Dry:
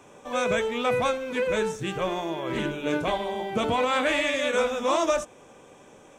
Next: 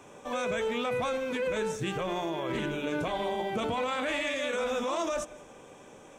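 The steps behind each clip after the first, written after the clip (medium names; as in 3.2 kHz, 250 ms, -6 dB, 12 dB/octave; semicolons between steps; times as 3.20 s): peak limiter -23 dBFS, peak gain reduction 11 dB; on a send at -20 dB: reverberation RT60 0.55 s, pre-delay 146 ms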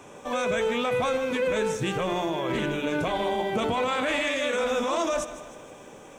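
bit-crushed delay 156 ms, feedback 55%, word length 10-bit, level -14 dB; trim +4.5 dB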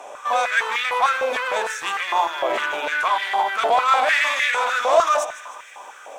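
one-sided clip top -25.5 dBFS; step-sequenced high-pass 6.6 Hz 670–1900 Hz; trim +5 dB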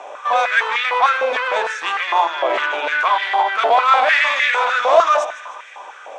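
band-pass 310–4500 Hz; trim +4 dB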